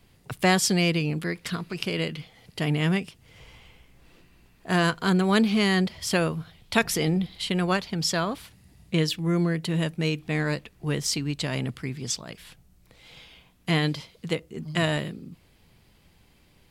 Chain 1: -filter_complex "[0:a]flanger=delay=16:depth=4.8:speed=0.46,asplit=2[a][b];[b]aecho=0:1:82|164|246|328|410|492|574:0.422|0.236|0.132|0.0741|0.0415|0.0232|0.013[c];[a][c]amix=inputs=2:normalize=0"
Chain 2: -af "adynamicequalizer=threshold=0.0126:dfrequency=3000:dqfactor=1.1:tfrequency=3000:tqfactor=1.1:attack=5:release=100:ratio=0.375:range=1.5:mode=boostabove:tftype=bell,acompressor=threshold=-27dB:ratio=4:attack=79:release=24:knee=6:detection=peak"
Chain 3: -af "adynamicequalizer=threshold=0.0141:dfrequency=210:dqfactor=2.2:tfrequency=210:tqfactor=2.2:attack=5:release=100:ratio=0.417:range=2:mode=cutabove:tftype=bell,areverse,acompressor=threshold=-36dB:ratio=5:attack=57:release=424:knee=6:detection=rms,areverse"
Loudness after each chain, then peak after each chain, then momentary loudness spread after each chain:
-28.5, -27.0, -38.0 LUFS; -9.0, -7.0, -19.0 dBFS; 12, 12, 14 LU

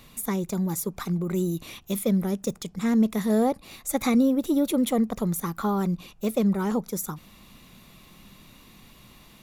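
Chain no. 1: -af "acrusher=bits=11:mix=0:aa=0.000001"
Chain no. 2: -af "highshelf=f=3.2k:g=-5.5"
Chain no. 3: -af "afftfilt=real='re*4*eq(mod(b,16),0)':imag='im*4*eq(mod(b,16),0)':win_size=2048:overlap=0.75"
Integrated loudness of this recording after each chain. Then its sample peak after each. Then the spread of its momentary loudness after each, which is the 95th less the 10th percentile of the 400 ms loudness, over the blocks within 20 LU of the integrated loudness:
-26.0, -26.0, -34.0 LUFS; -11.5, -12.0, -14.5 dBFS; 9, 10, 24 LU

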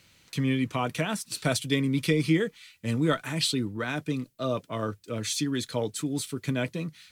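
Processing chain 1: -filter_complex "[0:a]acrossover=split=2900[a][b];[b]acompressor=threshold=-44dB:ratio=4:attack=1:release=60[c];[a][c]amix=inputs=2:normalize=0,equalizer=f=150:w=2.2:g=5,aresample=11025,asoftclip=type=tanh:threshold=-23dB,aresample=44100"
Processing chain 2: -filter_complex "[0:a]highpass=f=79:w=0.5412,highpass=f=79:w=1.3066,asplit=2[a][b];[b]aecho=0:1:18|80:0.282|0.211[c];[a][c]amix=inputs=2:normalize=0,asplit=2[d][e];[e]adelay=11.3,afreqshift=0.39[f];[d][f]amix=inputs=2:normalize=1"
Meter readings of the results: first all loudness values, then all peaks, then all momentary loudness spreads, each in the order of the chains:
-31.5, -32.0 LUFS; -22.0, -14.5 dBFS; 6, 8 LU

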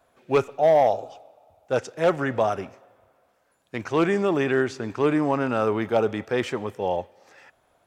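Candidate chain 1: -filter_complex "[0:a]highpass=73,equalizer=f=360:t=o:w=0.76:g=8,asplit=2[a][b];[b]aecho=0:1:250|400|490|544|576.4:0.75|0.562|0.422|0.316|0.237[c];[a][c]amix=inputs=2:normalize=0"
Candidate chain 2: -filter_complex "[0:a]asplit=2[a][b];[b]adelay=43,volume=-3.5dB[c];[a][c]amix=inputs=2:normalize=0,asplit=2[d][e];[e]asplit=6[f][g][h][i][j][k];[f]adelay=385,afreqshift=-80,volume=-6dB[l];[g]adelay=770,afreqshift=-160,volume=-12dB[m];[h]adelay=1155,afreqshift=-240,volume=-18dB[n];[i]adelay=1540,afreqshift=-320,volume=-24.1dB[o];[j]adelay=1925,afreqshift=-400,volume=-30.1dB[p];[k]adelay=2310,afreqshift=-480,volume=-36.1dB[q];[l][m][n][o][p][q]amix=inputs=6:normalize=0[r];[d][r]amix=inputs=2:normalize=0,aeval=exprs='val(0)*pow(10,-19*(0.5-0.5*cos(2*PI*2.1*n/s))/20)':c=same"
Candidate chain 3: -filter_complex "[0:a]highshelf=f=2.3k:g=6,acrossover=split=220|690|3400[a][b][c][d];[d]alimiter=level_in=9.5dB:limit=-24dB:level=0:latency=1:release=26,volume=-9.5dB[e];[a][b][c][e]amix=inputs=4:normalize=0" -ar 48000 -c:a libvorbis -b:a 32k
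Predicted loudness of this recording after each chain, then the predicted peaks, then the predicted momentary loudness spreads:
-17.5, -28.5, -24.0 LUFS; -1.5, -9.5, -8.0 dBFS; 11, 13, 11 LU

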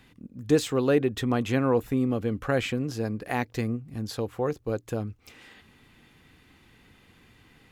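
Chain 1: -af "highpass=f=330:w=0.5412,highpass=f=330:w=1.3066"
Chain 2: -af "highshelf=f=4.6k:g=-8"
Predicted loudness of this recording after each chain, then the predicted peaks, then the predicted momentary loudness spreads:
-30.0, -28.0 LUFS; -12.5, -10.5 dBFS; 13, 10 LU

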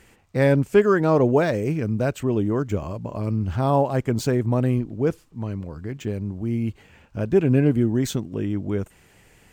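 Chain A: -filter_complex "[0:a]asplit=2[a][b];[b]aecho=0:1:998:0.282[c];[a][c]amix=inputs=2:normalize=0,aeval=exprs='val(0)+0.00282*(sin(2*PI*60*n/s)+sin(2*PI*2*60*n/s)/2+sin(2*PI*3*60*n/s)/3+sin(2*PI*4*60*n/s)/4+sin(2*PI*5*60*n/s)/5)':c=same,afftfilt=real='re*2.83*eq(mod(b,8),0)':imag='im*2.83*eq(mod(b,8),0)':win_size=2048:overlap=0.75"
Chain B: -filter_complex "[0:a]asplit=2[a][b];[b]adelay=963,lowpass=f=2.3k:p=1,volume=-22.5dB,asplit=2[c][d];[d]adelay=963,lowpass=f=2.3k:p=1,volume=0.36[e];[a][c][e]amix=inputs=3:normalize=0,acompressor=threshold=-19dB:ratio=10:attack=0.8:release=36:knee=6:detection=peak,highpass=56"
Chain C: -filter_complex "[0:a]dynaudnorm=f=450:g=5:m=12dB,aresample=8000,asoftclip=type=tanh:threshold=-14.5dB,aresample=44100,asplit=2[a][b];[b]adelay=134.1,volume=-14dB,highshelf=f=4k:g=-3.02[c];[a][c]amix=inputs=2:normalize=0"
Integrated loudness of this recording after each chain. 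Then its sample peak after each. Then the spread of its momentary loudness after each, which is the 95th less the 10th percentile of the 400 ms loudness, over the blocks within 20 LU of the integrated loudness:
-28.5, -27.5, -22.0 LUFS; -8.5, -14.0, -12.5 dBFS; 13, 8, 7 LU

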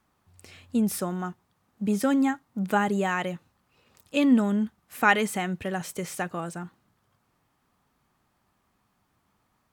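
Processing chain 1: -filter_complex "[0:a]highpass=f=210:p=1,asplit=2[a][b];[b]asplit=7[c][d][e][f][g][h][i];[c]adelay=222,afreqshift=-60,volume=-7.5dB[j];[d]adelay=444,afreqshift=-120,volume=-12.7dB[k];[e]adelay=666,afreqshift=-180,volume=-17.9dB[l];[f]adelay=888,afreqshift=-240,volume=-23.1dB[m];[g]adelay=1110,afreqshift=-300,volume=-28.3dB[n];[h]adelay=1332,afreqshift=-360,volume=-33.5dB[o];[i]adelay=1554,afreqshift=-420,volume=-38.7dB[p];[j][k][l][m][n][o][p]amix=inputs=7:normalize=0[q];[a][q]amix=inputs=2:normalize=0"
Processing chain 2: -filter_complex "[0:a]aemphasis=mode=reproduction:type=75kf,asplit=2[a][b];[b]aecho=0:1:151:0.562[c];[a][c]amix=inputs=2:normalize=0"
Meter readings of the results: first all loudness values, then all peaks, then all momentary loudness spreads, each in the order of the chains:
-27.5, -26.0 LUFS; -4.5, -7.0 dBFS; 17, 14 LU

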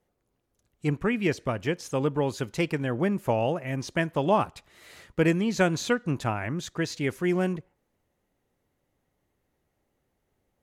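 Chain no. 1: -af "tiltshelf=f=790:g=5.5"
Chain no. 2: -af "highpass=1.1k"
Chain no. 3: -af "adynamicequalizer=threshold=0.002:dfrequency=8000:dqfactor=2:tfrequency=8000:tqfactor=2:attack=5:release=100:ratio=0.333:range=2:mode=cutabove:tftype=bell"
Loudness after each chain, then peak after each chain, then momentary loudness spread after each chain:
-24.5, -35.5, -27.5 LUFS; -6.5, -14.5, -10.0 dBFS; 7, 9, 7 LU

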